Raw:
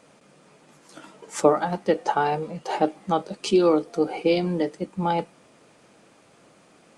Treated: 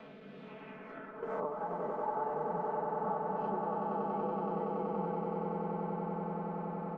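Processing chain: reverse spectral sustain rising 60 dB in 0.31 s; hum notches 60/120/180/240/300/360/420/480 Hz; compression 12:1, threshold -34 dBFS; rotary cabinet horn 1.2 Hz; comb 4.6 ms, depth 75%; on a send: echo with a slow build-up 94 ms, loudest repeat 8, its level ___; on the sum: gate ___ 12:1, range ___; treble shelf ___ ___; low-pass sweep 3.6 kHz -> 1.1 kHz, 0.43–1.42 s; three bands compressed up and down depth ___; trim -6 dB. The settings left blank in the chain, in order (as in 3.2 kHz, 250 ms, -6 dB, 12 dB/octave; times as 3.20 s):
-5.5 dB, -42 dBFS, -10 dB, 4.2 kHz, -8.5 dB, 70%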